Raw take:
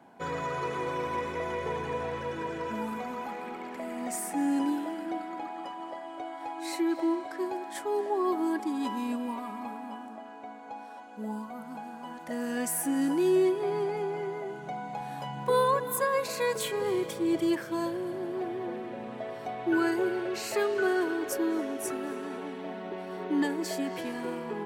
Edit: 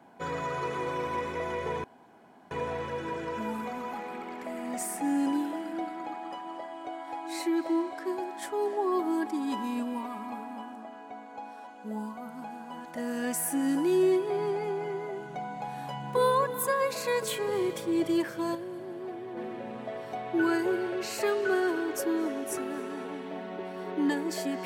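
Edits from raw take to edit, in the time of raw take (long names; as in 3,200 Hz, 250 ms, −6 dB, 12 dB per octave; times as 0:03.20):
0:01.84: splice in room tone 0.67 s
0:17.88–0:18.70: clip gain −5 dB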